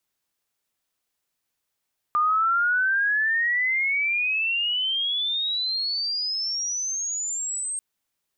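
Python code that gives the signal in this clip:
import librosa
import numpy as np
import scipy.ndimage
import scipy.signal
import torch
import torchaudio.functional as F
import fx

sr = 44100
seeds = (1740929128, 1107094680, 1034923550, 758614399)

y = fx.chirp(sr, length_s=5.64, from_hz=1200.0, to_hz=8500.0, law='logarithmic', from_db=-18.0, to_db=-26.5)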